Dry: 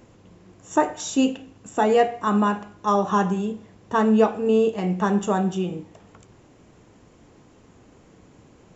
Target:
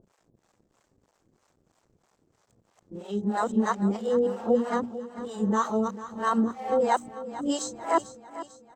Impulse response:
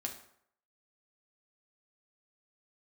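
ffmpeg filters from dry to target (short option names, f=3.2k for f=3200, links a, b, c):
-filter_complex "[0:a]areverse,aemphasis=mode=reproduction:type=75fm,agate=range=-22dB:threshold=-40dB:ratio=16:detection=peak,highshelf=f=3.6k:t=q:w=1.5:g=10.5,acompressor=mode=upward:threshold=-37dB:ratio=2.5,aeval=exprs='sgn(val(0))*max(abs(val(0))-0.00211,0)':c=same,asetrate=48091,aresample=44100,atempo=0.917004,bandreject=f=60:t=h:w=6,bandreject=f=120:t=h:w=6,bandreject=f=180:t=h:w=6,bandreject=f=240:t=h:w=6,bandreject=f=300:t=h:w=6,acrossover=split=530[a][b];[a]aeval=exprs='val(0)*(1-1/2+1/2*cos(2*PI*3.1*n/s))':c=same[c];[b]aeval=exprs='val(0)*(1-1/2-1/2*cos(2*PI*3.1*n/s))':c=same[d];[c][d]amix=inputs=2:normalize=0,aecho=1:1:446|892|1338|1784|2230:0.188|0.0961|0.049|0.025|0.0127"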